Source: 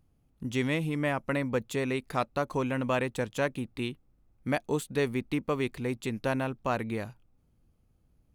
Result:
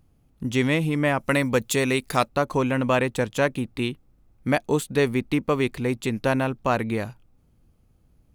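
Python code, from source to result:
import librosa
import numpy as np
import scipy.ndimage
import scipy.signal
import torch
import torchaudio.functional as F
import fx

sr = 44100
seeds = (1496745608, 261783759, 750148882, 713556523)

y = fx.high_shelf(x, sr, hz=fx.line((1.19, 2800.0), (2.27, 4100.0)), db=10.5, at=(1.19, 2.27), fade=0.02)
y = F.gain(torch.from_numpy(y), 7.0).numpy()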